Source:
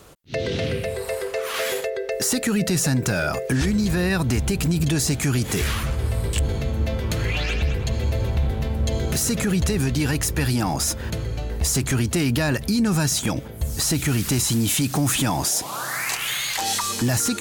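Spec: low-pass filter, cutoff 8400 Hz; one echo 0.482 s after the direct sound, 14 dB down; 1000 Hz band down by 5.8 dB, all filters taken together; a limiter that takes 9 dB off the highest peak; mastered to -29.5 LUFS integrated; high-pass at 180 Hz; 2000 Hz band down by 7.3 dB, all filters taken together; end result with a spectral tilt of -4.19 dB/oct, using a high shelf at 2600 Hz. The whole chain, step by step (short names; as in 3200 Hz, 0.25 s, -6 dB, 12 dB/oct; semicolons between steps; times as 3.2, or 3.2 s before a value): HPF 180 Hz; LPF 8400 Hz; bell 1000 Hz -6 dB; bell 2000 Hz -6 dB; high shelf 2600 Hz -3.5 dB; limiter -22.5 dBFS; echo 0.482 s -14 dB; gain +1.5 dB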